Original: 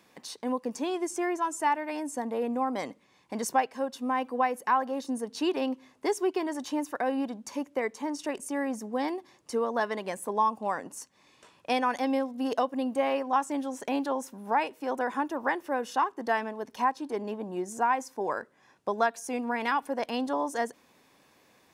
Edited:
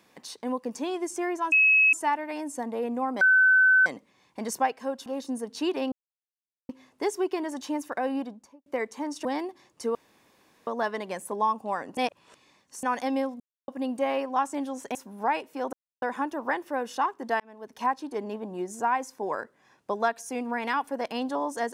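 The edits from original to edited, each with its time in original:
1.52 add tone 2570 Hz -16 dBFS 0.41 s
2.8 add tone 1520 Hz -15.5 dBFS 0.65 s
4–4.86 cut
5.72 insert silence 0.77 s
7.18–7.69 studio fade out
8.28–8.94 cut
9.64 insert room tone 0.72 s
10.94–11.8 reverse
12.37–12.65 mute
13.92–14.22 cut
15 insert silence 0.29 s
16.38–16.84 fade in

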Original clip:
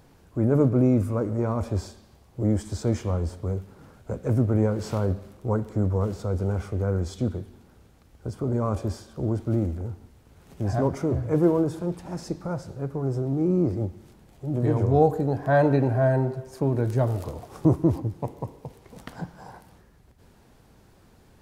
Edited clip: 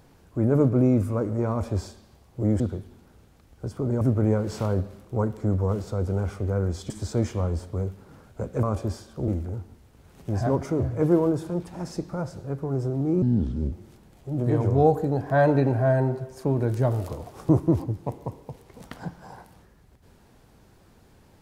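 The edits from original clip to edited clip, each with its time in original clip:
2.6–4.33 swap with 7.22–8.63
9.28–9.6 cut
13.54–13.88 speed 68%

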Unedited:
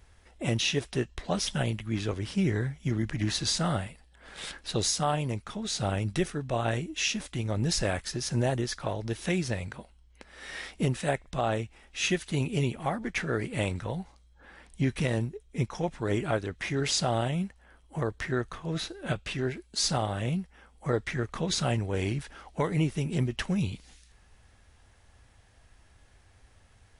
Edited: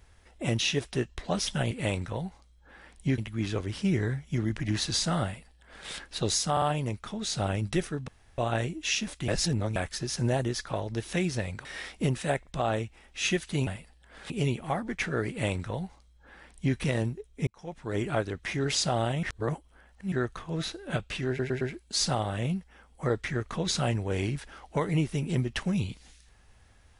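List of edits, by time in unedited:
3.78–4.41 copy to 12.46
5.05 stutter 0.05 s, 3 plays
6.51 insert room tone 0.30 s
7.41–7.89 reverse
9.78–10.44 cut
13.45–14.92 copy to 1.71
15.63–16.26 fade in
17.39–18.28 reverse
19.44 stutter 0.11 s, 4 plays

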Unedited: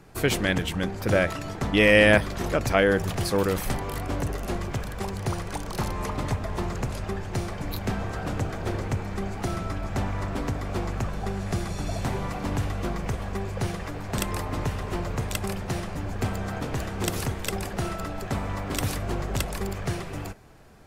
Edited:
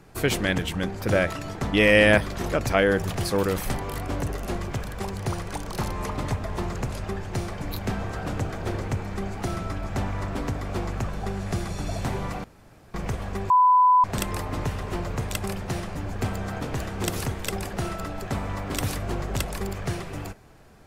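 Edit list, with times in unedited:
12.44–12.94 room tone
13.5–14.04 bleep 1000 Hz -13.5 dBFS

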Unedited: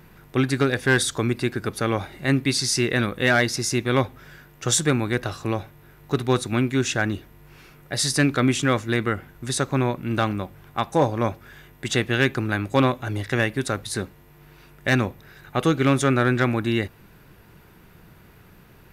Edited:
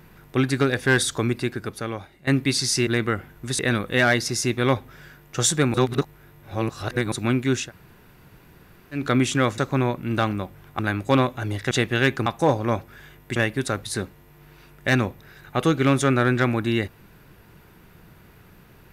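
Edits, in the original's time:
1.26–2.27 fade out, to -17 dB
5.02–6.4 reverse
6.92–8.27 room tone, crossfade 0.16 s
8.86–9.58 move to 2.87
10.79–11.89 swap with 12.44–13.36

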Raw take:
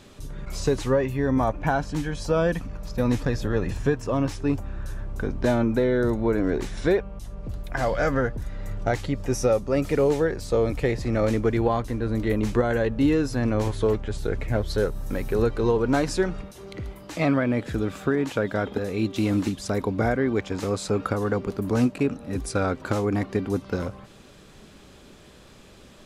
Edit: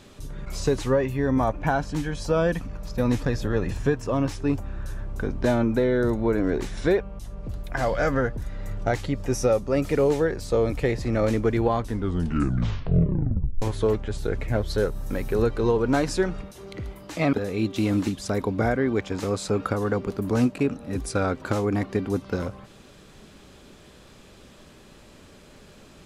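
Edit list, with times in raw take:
11.79 tape stop 1.83 s
17.33–18.73 cut

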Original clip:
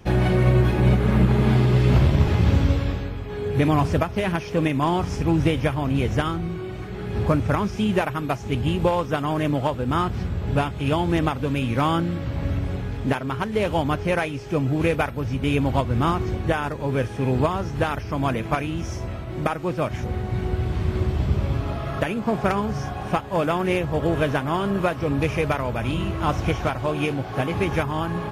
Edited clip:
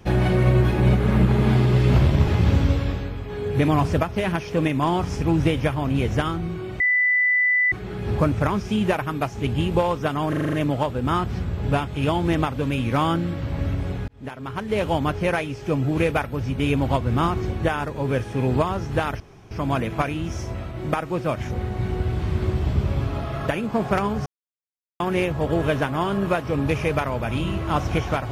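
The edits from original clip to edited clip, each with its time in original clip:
6.8 add tone 1990 Hz -16 dBFS 0.92 s
9.37 stutter 0.04 s, 7 plays
12.92–13.65 fade in
18.04 insert room tone 0.31 s
22.79–23.53 mute

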